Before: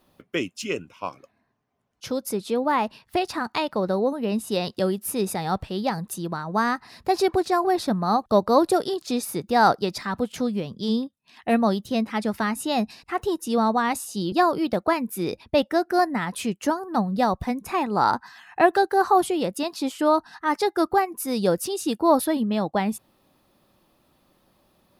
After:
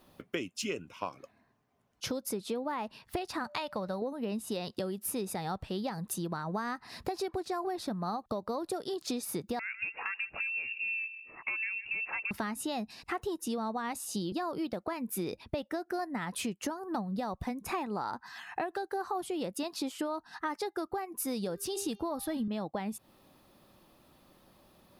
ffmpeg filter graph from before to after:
-filter_complex "[0:a]asettb=1/sr,asplit=3[a][b][c];[a]atrim=end=3.444[d];[b]atrim=start=3.44:end=4.02,asetpts=PTS-STARTPTS,afade=t=in:d=0.004:c=qsin,afade=t=out:st=0.576:d=0.004:c=qsin,aeval=exprs='val(0)+0.00631*sin(2*PI*590*n/s)':c=same,equalizer=f=340:t=o:w=1.1:g=-9[e];[c]atrim=start=4.016[f];[d][e]acrossfade=d=0.004:c1=hsin:c2=qsin[g];[g][f]acrossfade=d=0.004:c1=qsin:c2=hsin,asettb=1/sr,asplit=3[h][i][j];[h]atrim=end=9.594[k];[i]atrim=start=9.59:end=12.31,asetpts=PTS-STARTPTS,afade=t=in:d=0.004:c=qsin,afade=t=out:st=2.716:d=0.004:c=qsin,acompressor=threshold=-32dB:ratio=2:attack=3.2:release=140:knee=1:detection=peak,asplit=2[l][m];[m]adelay=153,lowpass=f=830:p=1,volume=-16dB,asplit=2[n][o];[o]adelay=153,lowpass=f=830:p=1,volume=0.38,asplit=2[p][q];[q]adelay=153,lowpass=f=830:p=1,volume=0.38[r];[l][n][p][r]amix=inputs=4:normalize=0,atrim=end_sample=119952,lowpass=f=2.5k:t=q:w=0.5098,lowpass=f=2.5k:t=q:w=0.6013,lowpass=f=2.5k:t=q:w=0.9,lowpass=f=2.5k:t=q:w=2.563,afreqshift=-2900[s];[j]atrim=start=12.306[t];[k][s]acrossfade=d=0.004:c1=hsin:c2=qsin[u];[u][t]acrossfade=d=0.004:c1=qsin:c2=hsin,asettb=1/sr,asplit=3[v][w][x];[v]atrim=end=21.324[y];[w]atrim=start=21.32:end=22.48,asetpts=PTS-STARTPTS,afade=t=in:d=0.004:c=qsin,afade=t=out:st=1.156:d=0.004:c=qsin,bandreject=f=398.9:t=h:w=4,bandreject=f=797.8:t=h:w=4,bandreject=f=1.1967k:t=h:w=4,bandreject=f=1.5956k:t=h:w=4,bandreject=f=1.9945k:t=h:w=4,bandreject=f=2.3934k:t=h:w=4,bandreject=f=2.7923k:t=h:w=4,bandreject=f=3.1912k:t=h:w=4,bandreject=f=3.5901k:t=h:w=4,bandreject=f=3.989k:t=h:w=4,bandreject=f=4.3879k:t=h:w=4,bandreject=f=4.7868k:t=h:w=4,bandreject=f=5.1857k:t=h:w=4,bandreject=f=5.5846k:t=h:w=4,bandreject=f=5.9835k:t=h:w=4,bandreject=f=6.3824k:t=h:w=4,asubboost=boost=10.5:cutoff=160,bandreject=f=950:w=24[z];[x]atrim=start=22.476[aa];[y][z]acrossfade=d=0.004:c1=hsin:c2=qsin[ab];[ab][aa]acrossfade=d=0.004:c1=qsin:c2=hsin,alimiter=limit=-14dB:level=0:latency=1:release=259,acompressor=threshold=-34dB:ratio=6,volume=1.5dB"

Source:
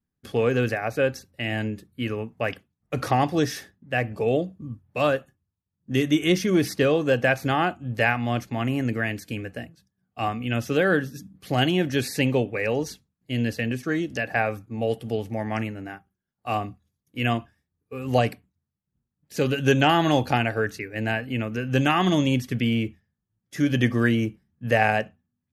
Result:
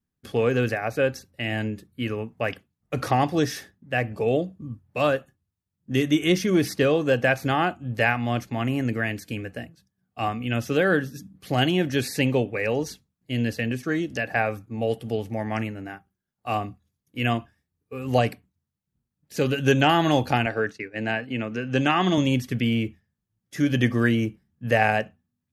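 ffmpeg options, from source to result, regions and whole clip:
-filter_complex "[0:a]asettb=1/sr,asplit=3[a][b][c];[a]atrim=end=20.464[d];[b]atrim=start=20.46:end=22.18,asetpts=PTS-STARTPTS,afade=t=in:d=0.004:c=qsin,afade=t=out:st=1.716:d=0.004:c=qsin,highpass=140,lowpass=6.8k,agate=range=-33dB:threshold=-36dB:ratio=3:release=100:detection=peak[e];[c]atrim=start=22.176[f];[d][e]acrossfade=d=0.004:c1=hsin:c2=qsin[g];[g][f]acrossfade=d=0.004:c1=qsin:c2=hsin"

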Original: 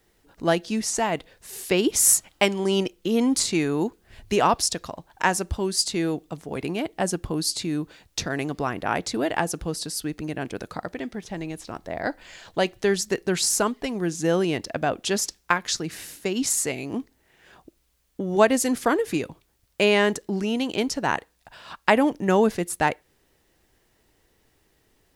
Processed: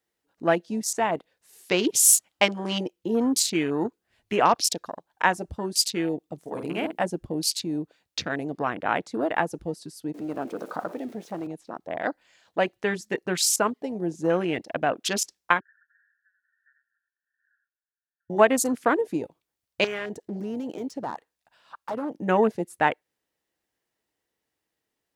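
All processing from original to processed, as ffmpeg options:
-filter_complex "[0:a]asettb=1/sr,asplit=3[a][b][c];[a]atrim=end=6.384[d];[b]atrim=start=6.38:end=7.04,asetpts=PTS-STARTPTS,afade=t=in:d=0.004:c=qsin,afade=t=out:st=0.656:d=0.004:c=qsin,highshelf=f=5.5k:g=9,bandreject=f=50:t=h:w=6,bandreject=f=100:t=h:w=6,bandreject=f=150:t=h:w=6,bandreject=f=200:t=h:w=6,bandreject=f=250:t=h:w=6,bandreject=f=300:t=h:w=6,bandreject=f=350:t=h:w=6,bandreject=f=400:t=h:w=6,asplit=2[e][f];[f]adelay=49,volume=-5dB[g];[e][g]amix=inputs=2:normalize=0,atrim=end_sample=29106[h];[c]atrim=start=7.036[i];[d][h]acrossfade=d=0.004:c1=hsin:c2=qsin[j];[j][i]acrossfade=d=0.004:c1=qsin:c2=hsin,asettb=1/sr,asplit=3[k][l][m];[k]atrim=end=10.144[n];[l]atrim=start=10.14:end=11.47,asetpts=PTS-STARTPTS,afade=t=in:d=0.004:c=qsin,afade=t=out:st=1.326:d=0.004:c=qsin,aeval=exprs='val(0)+0.5*0.0237*sgn(val(0))':c=same,highpass=200[o];[m]atrim=start=11.466[p];[n][o]acrossfade=d=0.004:c1=hsin:c2=qsin[q];[q][p]acrossfade=d=0.004:c1=qsin:c2=hsin,asettb=1/sr,asplit=3[r][s][t];[r]atrim=end=15.604[u];[s]atrim=start=15.6:end=18.3,asetpts=PTS-STARTPTS,afade=t=in:d=0.004:c=qsin,afade=t=out:st=2.696:d=0.004:c=qsin,asuperpass=centerf=1600:order=20:qfactor=3.5,aecho=1:1:88:0.447,atrim=end_sample=119070[v];[t]atrim=start=18.296[w];[u][v]acrossfade=d=0.004:c1=hsin:c2=qsin[x];[x][w]acrossfade=d=0.004:c1=qsin:c2=hsin,asettb=1/sr,asplit=3[y][z][aa];[y]atrim=end=19.844[ab];[z]atrim=start=19.84:end=22.23,asetpts=PTS-STARTPTS,afade=t=in:d=0.004:c=qsin,afade=t=out:st=2.386:d=0.004:c=qsin,acompressor=threshold=-24dB:ratio=3:attack=3.2:release=140:knee=1:detection=peak,aeval=exprs='0.0794*(abs(mod(val(0)/0.0794+3,4)-2)-1)':c=same[ac];[aa]atrim=start=22.226[ad];[ab][ac]acrossfade=d=0.004:c1=hsin:c2=qsin[ae];[ae][ad]acrossfade=d=0.004:c1=qsin:c2=hsin,highpass=f=270:p=1,bandreject=f=390:w=12,afwtdn=0.0224,volume=1dB"

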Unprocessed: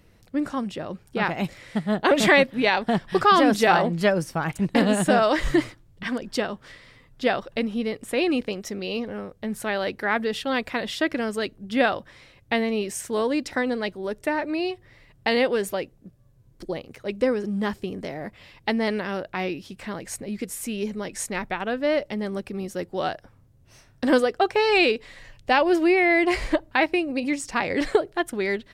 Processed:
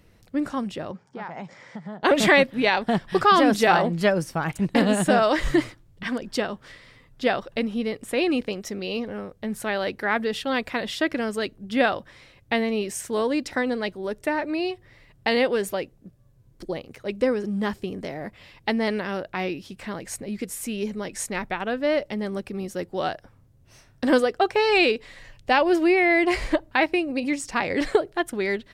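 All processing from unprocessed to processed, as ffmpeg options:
-filter_complex "[0:a]asettb=1/sr,asplit=3[a][b][c];[a]atrim=end=0.914[d];[b]atrim=start=0.91:end=2.03,asetpts=PTS-STARTPTS,afade=t=in:d=0.004:c=qsin,afade=t=out:st=1.116:d=0.004:c=qsin,acompressor=threshold=-31dB:ratio=8:attack=3.2:release=140:knee=1:detection=peak,highpass=f=140:w=0.5412,highpass=f=140:w=1.3066,equalizer=f=320:t=q:w=4:g=-7,equalizer=f=910:t=q:w=4:g=7,equalizer=f=2.7k:t=q:w=4:g=-9,equalizer=f=4k:t=q:w=4:g=-9,lowpass=f=6.4k:w=0.5412,lowpass=f=6.4k:w=1.3066[e];[c]atrim=start=2.026[f];[d][e]acrossfade=d=0.004:c1=hsin:c2=qsin[g];[g][f]acrossfade=d=0.004:c1=qsin:c2=hsin"

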